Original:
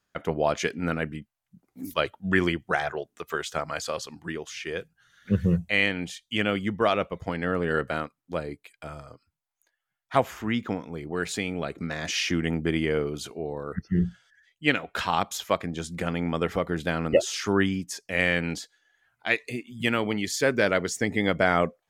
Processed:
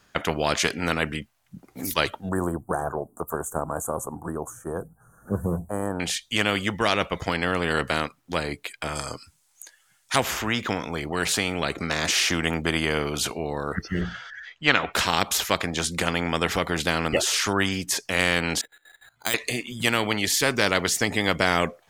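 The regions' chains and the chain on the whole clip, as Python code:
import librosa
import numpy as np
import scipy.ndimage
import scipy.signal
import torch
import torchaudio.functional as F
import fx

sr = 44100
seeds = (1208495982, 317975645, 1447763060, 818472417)

y = fx.chain(x, sr, fx.cheby2_bandstop(low_hz=2000.0, high_hz=5100.0, order=4, stop_db=50),
    fx.dynamic_eq(hz=1300.0, q=5.9, threshold_db=-55.0, ratio=4.0, max_db=-5), at=(2.29, 6.0))
y = fx.chain(y, sr, fx.peak_eq(hz=8200.0, db=15.0, octaves=1.7),
    fx.notch(hz=690.0, q=11.0), at=(8.95, 10.16))
y = fx.chain(y, sr, fx.lowpass(hz=6000.0, slope=24),
    fx.peak_eq(hz=1300.0, db=11.0, octaves=1.4), at=(14.01, 14.93))
y = fx.chain(y, sr, fx.level_steps(step_db=17),
    fx.resample_bad(factor=8, down='filtered', up='hold'), at=(18.61, 19.34))
y = fx.high_shelf(y, sr, hz=11000.0, db=-4.5)
y = fx.spectral_comp(y, sr, ratio=2.0)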